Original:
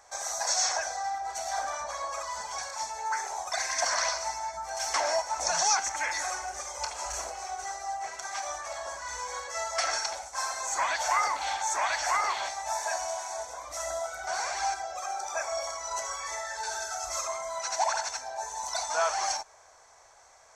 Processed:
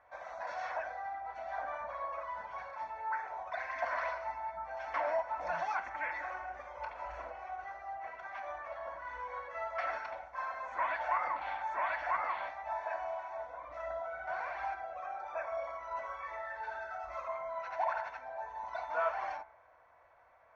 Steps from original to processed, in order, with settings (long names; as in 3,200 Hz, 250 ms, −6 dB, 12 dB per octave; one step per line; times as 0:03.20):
low-pass filter 2,400 Hz 24 dB per octave
notch comb filter 410 Hz
hum removal 66.79 Hz, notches 34
level −3.5 dB